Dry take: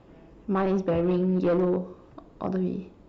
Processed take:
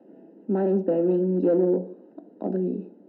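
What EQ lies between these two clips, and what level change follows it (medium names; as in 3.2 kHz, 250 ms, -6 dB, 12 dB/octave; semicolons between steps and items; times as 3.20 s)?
boxcar filter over 39 samples; steep high-pass 200 Hz 48 dB/octave; +5.5 dB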